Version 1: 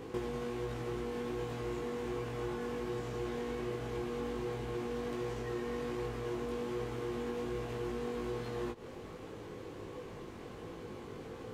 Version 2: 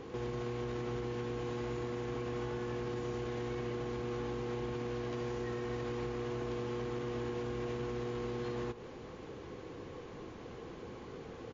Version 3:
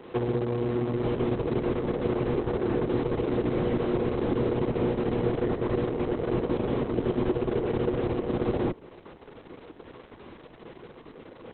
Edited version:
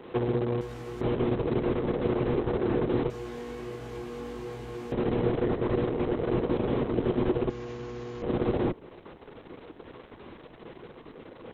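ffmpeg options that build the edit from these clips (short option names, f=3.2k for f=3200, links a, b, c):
-filter_complex "[0:a]asplit=2[a][b];[2:a]asplit=4[c][d][e][f];[c]atrim=end=0.612[g];[a]atrim=start=0.608:end=1.012[h];[d]atrim=start=1.008:end=3.102[i];[b]atrim=start=3.098:end=4.922[j];[e]atrim=start=4.918:end=7.502[k];[1:a]atrim=start=7.498:end=8.222[l];[f]atrim=start=8.218[m];[g][h]acrossfade=d=0.004:c1=hsin:c2=hsin[n];[n][i]acrossfade=d=0.004:c1=hsin:c2=hsin[o];[o][j]acrossfade=d=0.004:c1=hsin:c2=hsin[p];[p][k]acrossfade=d=0.004:c1=hsin:c2=hsin[q];[q][l]acrossfade=d=0.004:c1=hsin:c2=hsin[r];[r][m]acrossfade=d=0.004:c1=hsin:c2=hsin"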